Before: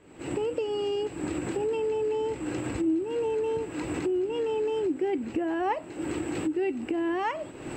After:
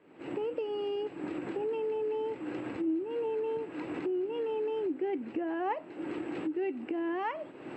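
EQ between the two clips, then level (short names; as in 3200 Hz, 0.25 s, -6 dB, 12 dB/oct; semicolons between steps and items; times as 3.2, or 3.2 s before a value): BPF 190–2900 Hz; -4.5 dB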